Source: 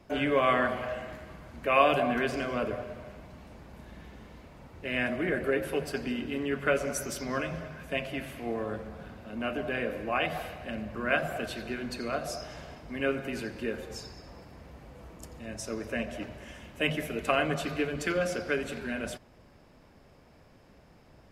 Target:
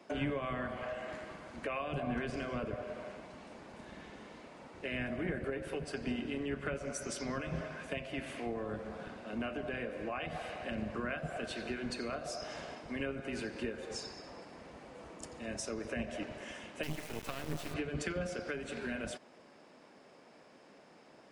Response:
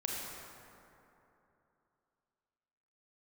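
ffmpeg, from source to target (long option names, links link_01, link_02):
-filter_complex "[0:a]acrossover=split=200[link_01][link_02];[link_01]aeval=exprs='0.0335*(cos(1*acos(clip(val(0)/0.0335,-1,1)))-cos(1*PI/2))+0.00473*(cos(7*acos(clip(val(0)/0.0335,-1,1)))-cos(7*PI/2))':channel_layout=same[link_03];[link_02]acompressor=threshold=-38dB:ratio=8[link_04];[link_03][link_04]amix=inputs=2:normalize=0,aresample=22050,aresample=44100,asettb=1/sr,asplit=3[link_05][link_06][link_07];[link_05]atrim=end=16.834[link_08];[link_06]atrim=start=16.83:end=17.74,asetpts=PTS-STARTPTS,afade=type=in:duration=0.004:curve=qsin,afade=type=out:start_time=0.906:duration=0.004:curve=qsin,acrusher=bits=5:dc=4:mix=0:aa=0.000001[link_09];[link_07]atrim=start=17.736[link_10];[link_08][link_09]acrossfade=duration=0.004:curve1=hsin:curve2=qsin[link_11];[link_11][link_10]acrossfade=duration=0.004:curve1=qsin:curve2=hsin,volume=1.5dB"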